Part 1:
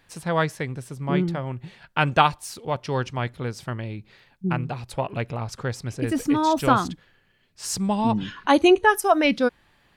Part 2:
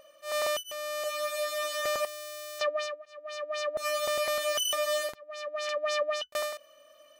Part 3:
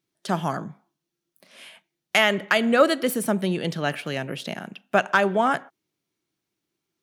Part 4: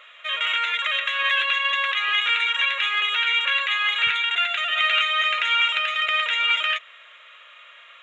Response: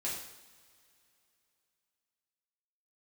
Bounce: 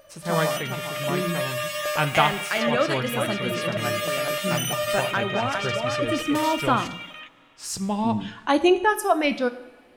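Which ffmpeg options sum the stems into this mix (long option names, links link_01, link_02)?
-filter_complex "[0:a]volume=-4dB,asplit=2[link_01][link_02];[link_02]volume=-11dB[link_03];[1:a]equalizer=frequency=2700:width=0.71:gain=-6,volume=3dB,asplit=2[link_04][link_05];[link_05]volume=-15dB[link_06];[2:a]volume=-7.5dB,asplit=3[link_07][link_08][link_09];[link_08]volume=-15.5dB[link_10];[link_09]volume=-5dB[link_11];[3:a]adelay=100,volume=-13dB,asplit=2[link_12][link_13];[link_13]volume=-5.5dB[link_14];[4:a]atrim=start_sample=2205[link_15];[link_03][link_06][link_10]amix=inputs=3:normalize=0[link_16];[link_16][link_15]afir=irnorm=-1:irlink=0[link_17];[link_11][link_14]amix=inputs=2:normalize=0,aecho=0:1:402:1[link_18];[link_01][link_04][link_07][link_12][link_17][link_18]amix=inputs=6:normalize=0,bandreject=frequency=60:width_type=h:width=6,bandreject=frequency=120:width_type=h:width=6,bandreject=frequency=180:width_type=h:width=6"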